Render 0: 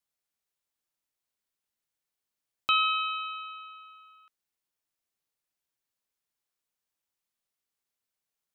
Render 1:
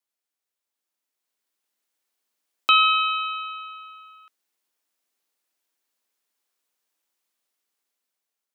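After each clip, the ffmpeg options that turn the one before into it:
-af "highpass=f=220:w=0.5412,highpass=f=220:w=1.3066,dynaudnorm=f=520:g=5:m=8dB"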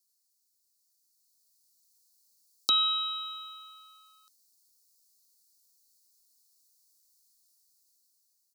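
-filter_complex "[0:a]firequalizer=gain_entry='entry(270,0);entry(580,-7);entry(2500,-27);entry(4300,12)':delay=0.05:min_phase=1,acrossover=split=620|1100[a][b][c];[a]acrusher=bits=4:mode=log:mix=0:aa=0.000001[d];[d][b][c]amix=inputs=3:normalize=0"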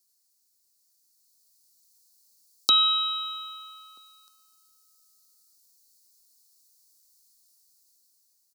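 -filter_complex "[0:a]asplit=2[a][b];[b]adelay=1283,volume=-30dB,highshelf=f=4k:g=-28.9[c];[a][c]amix=inputs=2:normalize=0,volume=5dB"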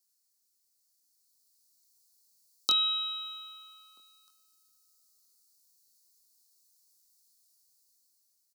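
-filter_complex "[0:a]asplit=2[a][b];[b]adelay=23,volume=-5.5dB[c];[a][c]amix=inputs=2:normalize=0,volume=-6dB"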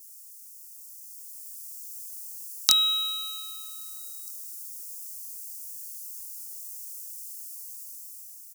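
-af "aexciter=amount=12.9:drive=8.1:freq=5.1k,aeval=exprs='2.82*sin(PI/2*2*val(0)/2.82)':c=same,volume=-10dB"

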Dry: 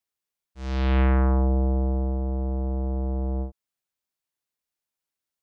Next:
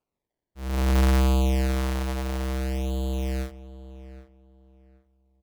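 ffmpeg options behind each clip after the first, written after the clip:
-filter_complex "[0:a]acrusher=samples=23:mix=1:aa=0.000001:lfo=1:lforange=23:lforate=0.58,asplit=2[a][b];[b]adelay=773,lowpass=f=2.1k:p=1,volume=-15dB,asplit=2[c][d];[d]adelay=773,lowpass=f=2.1k:p=1,volume=0.25,asplit=2[e][f];[f]adelay=773,lowpass=f=2.1k:p=1,volume=0.25[g];[a][c][e][g]amix=inputs=4:normalize=0"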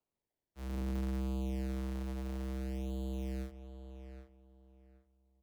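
-filter_complex "[0:a]acrossover=split=98|380[a][b][c];[a]acompressor=threshold=-36dB:ratio=4[d];[b]acompressor=threshold=-30dB:ratio=4[e];[c]acompressor=threshold=-44dB:ratio=4[f];[d][e][f]amix=inputs=3:normalize=0,volume=-6.5dB"

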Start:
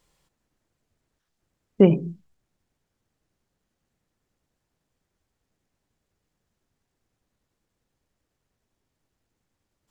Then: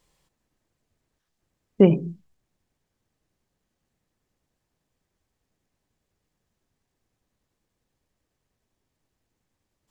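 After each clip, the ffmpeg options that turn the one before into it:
-af "bandreject=f=1.4k:w=18"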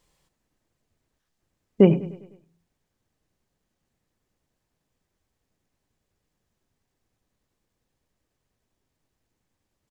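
-af "aecho=1:1:101|202|303|404|505:0.126|0.068|0.0367|0.0198|0.0107"

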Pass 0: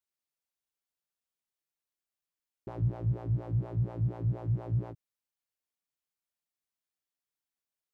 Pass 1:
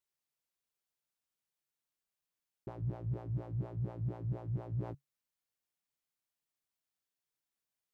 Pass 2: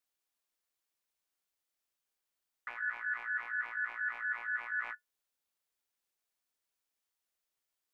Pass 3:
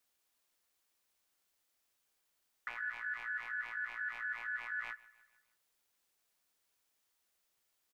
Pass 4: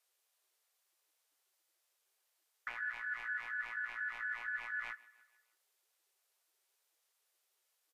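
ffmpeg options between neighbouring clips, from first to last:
-af "equalizer=f=140:t=o:w=0.27:g=5.5,areverse,acompressor=threshold=-34dB:ratio=6,areverse"
-filter_complex "[0:a]aeval=exprs='val(0)*sin(2*PI*1600*n/s)':c=same,equalizer=f=130:t=o:w=1.2:g=-10.5,asplit=2[a][b];[b]alimiter=level_in=13.5dB:limit=-24dB:level=0:latency=1:release=102,volume=-13.5dB,volume=0dB[c];[a][c]amix=inputs=2:normalize=0"
-filter_complex "[0:a]acrossover=split=170|3000[a][b][c];[b]acompressor=threshold=-53dB:ratio=2.5[d];[a][d][c]amix=inputs=3:normalize=0,aecho=1:1:152|304|456|608:0.0841|0.0446|0.0236|0.0125,volume=7dB"
-ar 44100 -c:a libvorbis -b:a 48k

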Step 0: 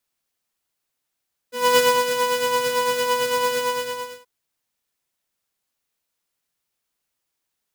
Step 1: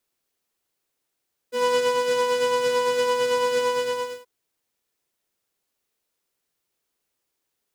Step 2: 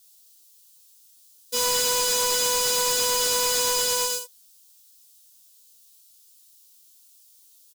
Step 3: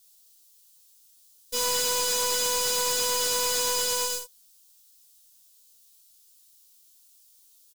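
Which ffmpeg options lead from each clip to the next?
-filter_complex "[0:a]acompressor=threshold=-22dB:ratio=6,equalizer=f=400:t=o:w=0.94:g=7,acrossover=split=9600[a][b];[b]acompressor=threshold=-53dB:ratio=4:attack=1:release=60[c];[a][c]amix=inputs=2:normalize=0"
-af "aexciter=amount=6.6:drive=7.7:freq=3.1k,aecho=1:1:17|27:0.596|0.501,volume=21.5dB,asoftclip=hard,volume=-21.5dB"
-af "aeval=exprs='0.0891*(cos(1*acos(clip(val(0)/0.0891,-1,1)))-cos(1*PI/2))+0.00891*(cos(6*acos(clip(val(0)/0.0891,-1,1)))-cos(6*PI/2))':c=same,volume=-3dB"

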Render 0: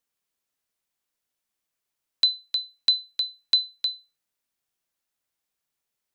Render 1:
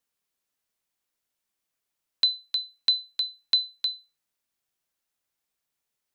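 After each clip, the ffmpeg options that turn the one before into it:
-filter_complex "[0:a]acrossover=split=5200[a][b];[b]acompressor=threshold=-40dB:ratio=4:attack=1:release=60[c];[a][c]amix=inputs=2:normalize=0"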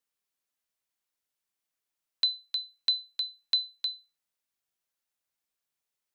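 -af "lowshelf=f=450:g=-3.5,volume=-4dB"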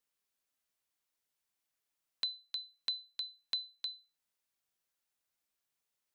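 -af "acompressor=threshold=-51dB:ratio=1.5"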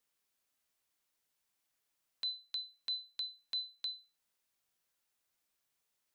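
-af "alimiter=level_in=8dB:limit=-24dB:level=0:latency=1,volume=-8dB,volume=3.5dB"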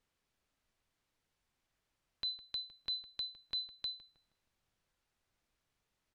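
-filter_complex "[0:a]aemphasis=mode=reproduction:type=bsi,asplit=2[a][b];[b]adelay=158,lowpass=f=1.5k:p=1,volume=-14dB,asplit=2[c][d];[d]adelay=158,lowpass=f=1.5k:p=1,volume=0.55,asplit=2[e][f];[f]adelay=158,lowpass=f=1.5k:p=1,volume=0.55,asplit=2[g][h];[h]adelay=158,lowpass=f=1.5k:p=1,volume=0.55,asplit=2[i][j];[j]adelay=158,lowpass=f=1.5k:p=1,volume=0.55,asplit=2[k][l];[l]adelay=158,lowpass=f=1.5k:p=1,volume=0.55[m];[a][c][e][g][i][k][m]amix=inputs=7:normalize=0,volume=4dB"

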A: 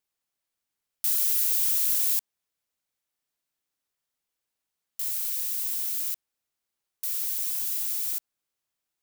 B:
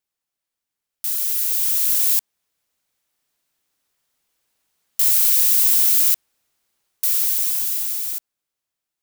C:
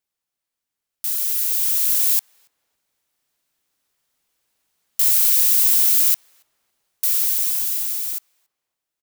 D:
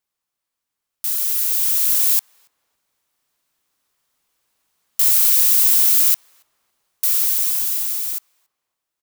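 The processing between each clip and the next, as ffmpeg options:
-af "dynaudnorm=f=240:g=17:m=16.5dB"
-filter_complex "[0:a]asplit=2[a][b];[b]adelay=281,lowpass=f=990:p=1,volume=-19.5dB,asplit=2[c][d];[d]adelay=281,lowpass=f=990:p=1,volume=0.48,asplit=2[e][f];[f]adelay=281,lowpass=f=990:p=1,volume=0.48,asplit=2[g][h];[h]adelay=281,lowpass=f=990:p=1,volume=0.48[i];[a][c][e][g][i]amix=inputs=5:normalize=0"
-af "equalizer=f=1.1k:w=2.7:g=4.5,volume=1.5dB"

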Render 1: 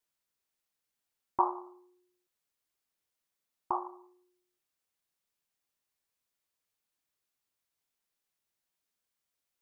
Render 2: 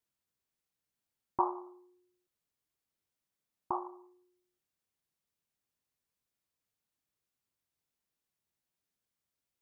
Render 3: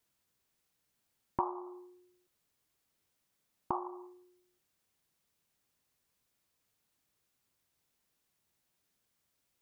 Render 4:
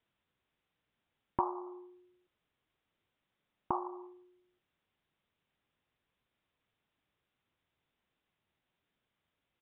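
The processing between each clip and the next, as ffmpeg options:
-af "equalizer=f=110:w=0.34:g=9,volume=-4dB"
-af "acompressor=threshold=-44dB:ratio=2.5,volume=8.5dB"
-af "aresample=8000,aresample=44100,volume=1dB"

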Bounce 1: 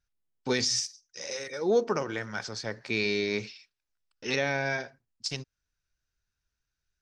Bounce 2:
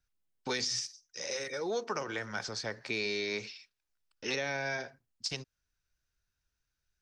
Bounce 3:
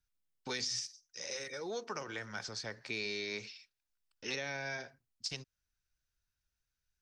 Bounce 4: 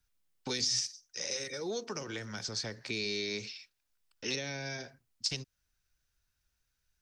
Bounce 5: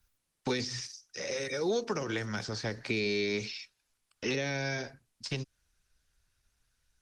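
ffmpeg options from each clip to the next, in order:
-filter_complex "[0:a]acrossover=split=430|860|4600[a][b][c][d];[a]acompressor=threshold=-43dB:ratio=4[e];[b]acompressor=threshold=-39dB:ratio=4[f];[c]acompressor=threshold=-35dB:ratio=4[g];[d]acompressor=threshold=-38dB:ratio=4[h];[e][f][g][h]amix=inputs=4:normalize=0"
-af "equalizer=f=560:w=0.4:g=-3.5,volume=-3dB"
-filter_complex "[0:a]acrossover=split=450|3000[a][b][c];[b]acompressor=threshold=-51dB:ratio=6[d];[a][d][c]amix=inputs=3:normalize=0,volume=6.5dB"
-filter_complex "[0:a]acrossover=split=2600[a][b];[b]acompressor=threshold=-44dB:ratio=4:attack=1:release=60[c];[a][c]amix=inputs=2:normalize=0,volume=7dB" -ar 48000 -c:a libopus -b:a 24k

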